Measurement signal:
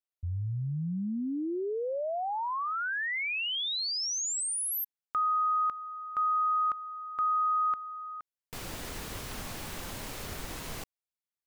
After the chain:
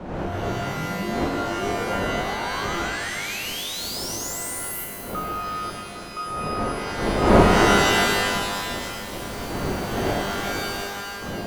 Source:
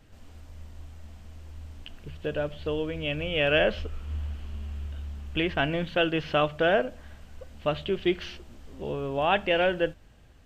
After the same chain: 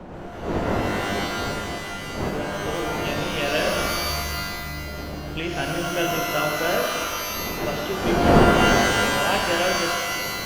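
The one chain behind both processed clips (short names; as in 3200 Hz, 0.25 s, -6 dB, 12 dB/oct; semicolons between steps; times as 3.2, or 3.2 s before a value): wind noise 560 Hz -27 dBFS; stuck buffer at 2.74, samples 256, times 8; shimmer reverb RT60 2 s, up +12 st, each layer -2 dB, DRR 1.5 dB; gain -3 dB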